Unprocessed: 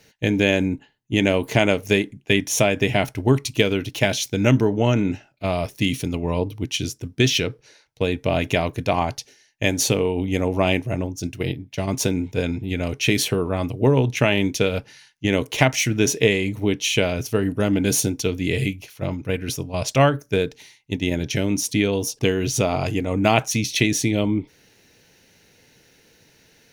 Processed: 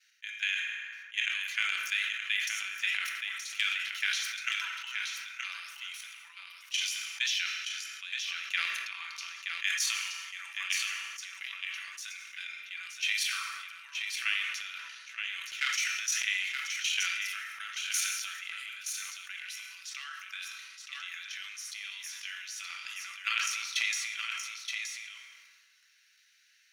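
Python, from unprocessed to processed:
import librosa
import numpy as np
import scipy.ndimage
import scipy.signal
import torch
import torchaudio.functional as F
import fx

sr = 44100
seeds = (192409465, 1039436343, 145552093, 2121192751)

y = np.minimum(x, 2.0 * 10.0 ** (-8.5 / 20.0) - x)
y = scipy.signal.sosfilt(scipy.signal.butter(8, 1400.0, 'highpass', fs=sr, output='sos'), y)
y = fx.high_shelf(y, sr, hz=9900.0, db=-11.0)
y = y + 0.37 * np.pad(y, (int(6.0 * sr / 1000.0), 0))[:len(y)]
y = fx.level_steps(y, sr, step_db=12)
y = fx.transient(y, sr, attack_db=3, sustain_db=fx.steps((0.0, -1.0), (1.35, 10.0)))
y = y + 10.0 ** (-6.0 / 20.0) * np.pad(y, (int(923 * sr / 1000.0), 0))[:len(y)]
y = fx.rev_fdn(y, sr, rt60_s=2.4, lf_ratio=1.2, hf_ratio=0.45, size_ms=15.0, drr_db=4.5)
y = fx.sustainer(y, sr, db_per_s=33.0)
y = y * librosa.db_to_amplitude(-8.0)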